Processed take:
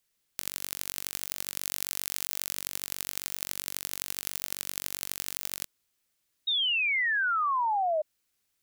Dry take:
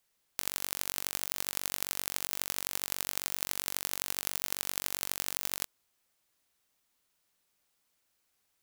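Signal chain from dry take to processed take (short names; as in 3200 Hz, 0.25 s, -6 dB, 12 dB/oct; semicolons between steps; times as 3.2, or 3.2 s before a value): bell 810 Hz -6.5 dB 1.6 oct; 1.61–2.56 sample leveller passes 2; 6.47–8.02 painted sound fall 600–3800 Hz -27 dBFS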